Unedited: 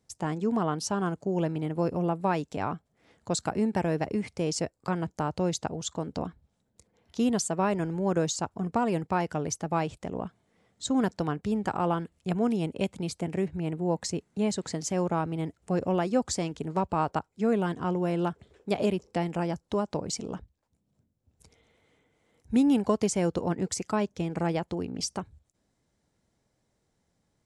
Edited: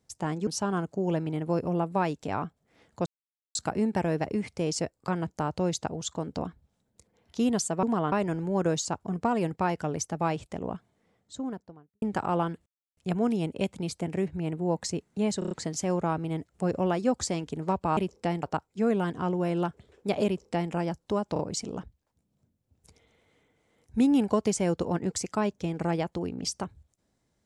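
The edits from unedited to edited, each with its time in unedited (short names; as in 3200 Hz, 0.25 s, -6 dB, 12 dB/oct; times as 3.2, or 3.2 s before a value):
0.47–0.76 move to 7.63
3.35 insert silence 0.49 s
10.21–11.53 studio fade out
12.17 insert silence 0.31 s
14.59 stutter 0.03 s, 5 plays
18.88–19.34 copy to 17.05
19.95 stutter 0.03 s, 3 plays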